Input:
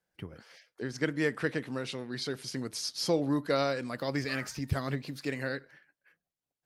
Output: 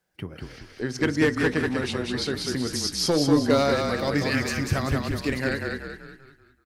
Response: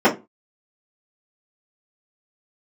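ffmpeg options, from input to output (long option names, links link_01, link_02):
-filter_complex "[0:a]volume=21.5dB,asoftclip=hard,volume=-21.5dB,asplit=7[link_01][link_02][link_03][link_04][link_05][link_06][link_07];[link_02]adelay=192,afreqshift=-32,volume=-3.5dB[link_08];[link_03]adelay=384,afreqshift=-64,volume=-10.6dB[link_09];[link_04]adelay=576,afreqshift=-96,volume=-17.8dB[link_10];[link_05]adelay=768,afreqshift=-128,volume=-24.9dB[link_11];[link_06]adelay=960,afreqshift=-160,volume=-32dB[link_12];[link_07]adelay=1152,afreqshift=-192,volume=-39.2dB[link_13];[link_01][link_08][link_09][link_10][link_11][link_12][link_13]amix=inputs=7:normalize=0,asplit=2[link_14][link_15];[1:a]atrim=start_sample=2205[link_16];[link_15][link_16]afir=irnorm=-1:irlink=0,volume=-38.5dB[link_17];[link_14][link_17]amix=inputs=2:normalize=0,volume=7dB"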